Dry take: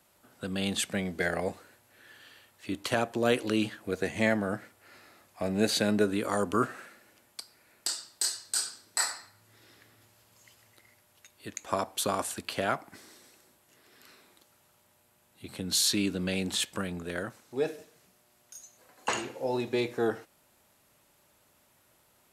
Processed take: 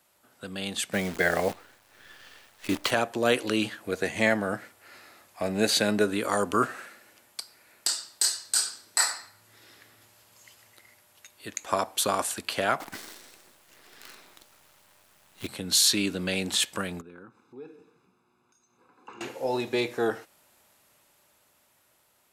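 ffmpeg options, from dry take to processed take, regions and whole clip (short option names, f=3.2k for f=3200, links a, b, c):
-filter_complex "[0:a]asettb=1/sr,asplit=3[a][b][c];[a]atrim=end=0.934[d];[b]atrim=start=0.93:end=2.91,asetpts=PTS-STARTPTS,afade=t=in:d=0.004:c=qsin,afade=t=out:st=1.976:d=0.004:c=qsin,aemphasis=mode=reproduction:type=50kf,acontrast=71,acrusher=bits=7:dc=4:mix=0:aa=0.000001[e];[c]atrim=start=2.906[f];[d][e]acrossfade=d=0.004:c1=hsin:c2=qsin[g];[g][f]acrossfade=d=0.004:c1=qsin:c2=hsin,asettb=1/sr,asplit=3[h][i][j];[h]atrim=end=12.804[k];[i]atrim=start=12.8:end=15.47,asetpts=PTS-STARTPTS,afade=t=in:d=0.004:c=qsin,afade=t=out:st=2.666:d=0.004:c=qsin,highshelf=f=7.6k:g=-7,acontrast=86,acrusher=bits=8:dc=4:mix=0:aa=0.000001[l];[j]atrim=start=15.466[m];[k][l]acrossfade=d=0.004:c1=hsin:c2=qsin[n];[n][m]acrossfade=d=0.004:c1=qsin:c2=hsin,asettb=1/sr,asplit=3[o][p][q];[o]atrim=end=17.014[r];[p]atrim=start=17.01:end=19.21,asetpts=PTS-STARTPTS,afade=t=in:d=0.004:c=qsin,afade=t=out:st=2.196:d=0.004:c=qsin,aecho=1:1:0.8:0.95,atrim=end_sample=97020,acompressor=threshold=-52dB:ratio=2:attack=3.2:release=140:knee=1:detection=peak,bandpass=f=370:t=q:w=0.71[s];[q]atrim=start=19.206[t];[r][s]acrossfade=d=0.004:c1=hsin:c2=qsin[u];[u][t]acrossfade=d=0.004:c1=qsin:c2=hsin,lowshelf=f=400:g=-6.5,dynaudnorm=f=860:g=5:m=5dB"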